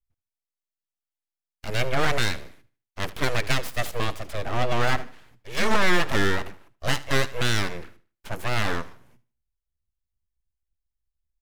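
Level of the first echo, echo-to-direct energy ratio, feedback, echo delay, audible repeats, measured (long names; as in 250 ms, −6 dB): −18.5 dB, −18.0 dB, 34%, 76 ms, 2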